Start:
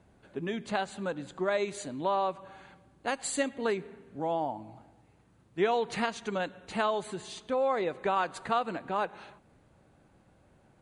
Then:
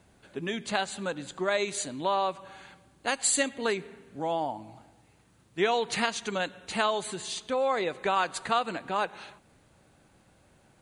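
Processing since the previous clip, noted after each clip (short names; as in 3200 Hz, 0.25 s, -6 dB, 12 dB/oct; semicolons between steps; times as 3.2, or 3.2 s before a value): high shelf 2100 Hz +10.5 dB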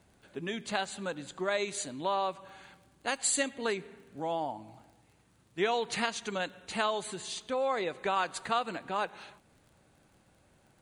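crackle 29/s -47 dBFS; gain -3.5 dB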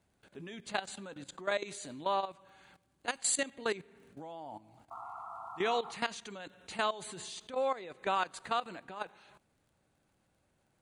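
painted sound noise, 4.9–5.99, 660–1400 Hz -41 dBFS; level quantiser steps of 15 dB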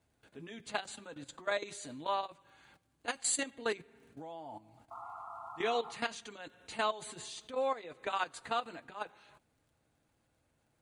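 notch comb 190 Hz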